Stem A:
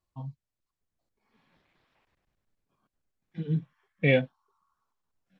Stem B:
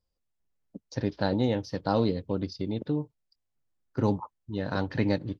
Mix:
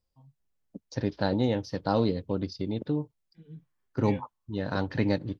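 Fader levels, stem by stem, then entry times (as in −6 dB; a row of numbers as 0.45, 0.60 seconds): −18.0, 0.0 decibels; 0.00, 0.00 seconds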